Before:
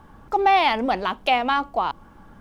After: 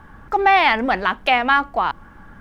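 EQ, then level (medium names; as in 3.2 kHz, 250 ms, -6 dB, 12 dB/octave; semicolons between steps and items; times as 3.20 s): bass shelf 210 Hz +5.5 dB; peaking EQ 1.7 kHz +11 dB 0.95 oct; 0.0 dB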